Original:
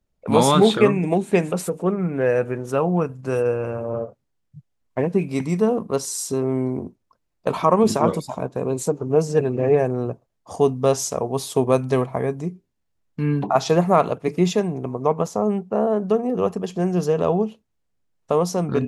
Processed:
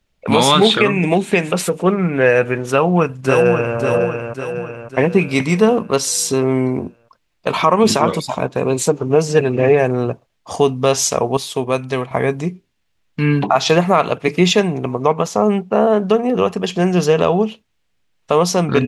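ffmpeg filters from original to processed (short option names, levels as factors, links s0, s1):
-filter_complex "[0:a]asplit=2[s0][s1];[s1]afade=t=in:st=2.69:d=0.01,afade=t=out:st=3.78:d=0.01,aecho=0:1:550|1100|1650|2200|2750|3300:0.530884|0.265442|0.132721|0.0663606|0.0331803|0.0165901[s2];[s0][s2]amix=inputs=2:normalize=0,asplit=3[s3][s4][s5];[s3]atrim=end=11.372[s6];[s4]atrim=start=11.368:end=12.112,asetpts=PTS-STARTPTS,volume=0.422[s7];[s5]atrim=start=12.108[s8];[s6][s7]acrossfade=d=0.004:c1=hsin:c2=hsin[s9];[s9][s8]acrossfade=d=0.004:c1=hsin:c2=hsin,equalizer=f=2800:w=0.62:g=11.5,alimiter=limit=0.447:level=0:latency=1:release=197,volume=1.88"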